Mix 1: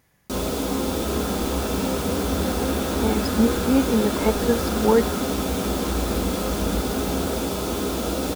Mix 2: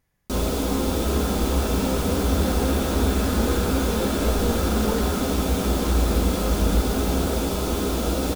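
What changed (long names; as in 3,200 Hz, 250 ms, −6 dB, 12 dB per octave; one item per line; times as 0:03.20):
speech −11.5 dB
master: remove high-pass filter 110 Hz 6 dB per octave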